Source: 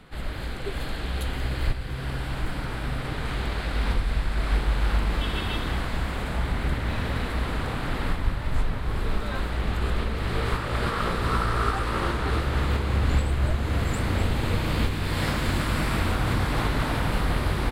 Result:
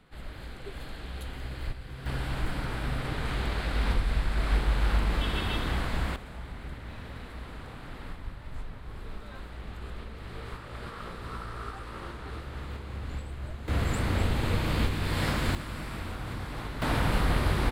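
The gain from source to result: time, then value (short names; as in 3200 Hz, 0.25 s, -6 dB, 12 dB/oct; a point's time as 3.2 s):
-9.5 dB
from 2.06 s -2 dB
from 6.16 s -14 dB
from 13.68 s -2.5 dB
from 15.55 s -12 dB
from 16.82 s -1 dB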